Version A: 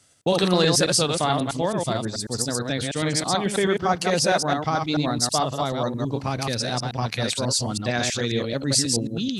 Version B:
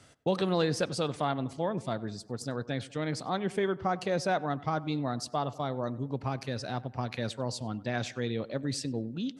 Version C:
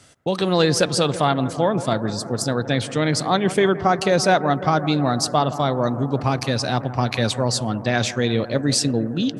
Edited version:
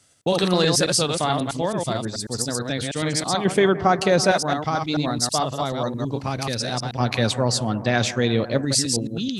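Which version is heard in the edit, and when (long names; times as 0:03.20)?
A
0:03.45–0:04.31: punch in from C
0:07.00–0:08.65: punch in from C
not used: B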